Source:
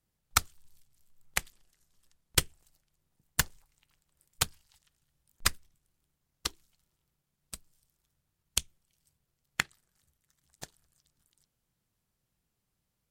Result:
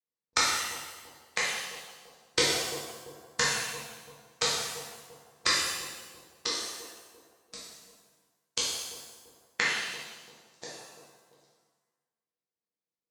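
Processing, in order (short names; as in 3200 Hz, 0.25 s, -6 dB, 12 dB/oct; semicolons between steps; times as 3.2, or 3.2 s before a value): on a send: analogue delay 0.34 s, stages 2048, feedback 45%, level -12 dB; on the sum: gate with hold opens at -56 dBFS; speaker cabinet 250–6300 Hz, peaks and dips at 490 Hz +6 dB, 750 Hz -5 dB, 1400 Hz -5 dB, 2900 Hz -9 dB; shimmer reverb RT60 1.1 s, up +7 st, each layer -8 dB, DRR -7.5 dB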